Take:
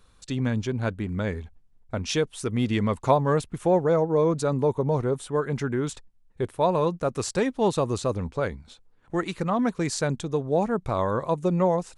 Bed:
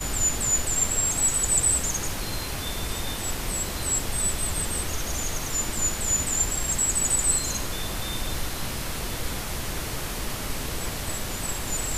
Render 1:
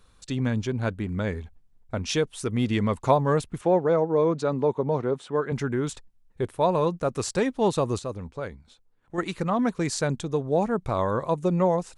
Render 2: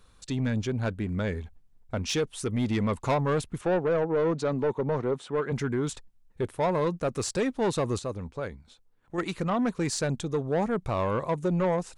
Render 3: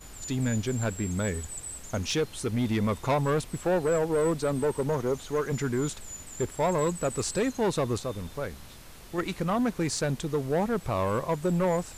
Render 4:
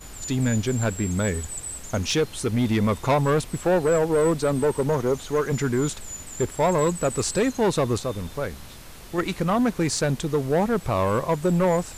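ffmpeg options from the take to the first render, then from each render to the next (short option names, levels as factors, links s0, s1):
-filter_complex "[0:a]asettb=1/sr,asplit=3[s0][s1][s2];[s0]atrim=end=3.614[s3];[s1]atrim=start=3.61:end=5.52,asetpts=PTS-STARTPTS,afade=t=in:d=0.004:c=qsin,afade=t=out:st=1.906:d=0.004:c=qsin,highpass=160,lowpass=4800[s4];[s2]atrim=start=5.516[s5];[s3][s4]acrossfade=d=0.004:c1=hsin:c2=qsin[s6];[s6][s5]acrossfade=d=0.004:c1=qsin:c2=hsin,asplit=3[s7][s8][s9];[s7]atrim=end=7.992[s10];[s8]atrim=start=7.988:end=9.182,asetpts=PTS-STARTPTS,volume=0.473[s11];[s9]atrim=start=9.178[s12];[s10][s11]acrossfade=d=0.004:c1=hsin:c2=hsin[s13];[s13][s12]acrossfade=d=0.004:c1=hsin:c2=hsin"
-af "asoftclip=type=tanh:threshold=0.1"
-filter_complex "[1:a]volume=0.133[s0];[0:a][s0]amix=inputs=2:normalize=0"
-af "volume=1.78"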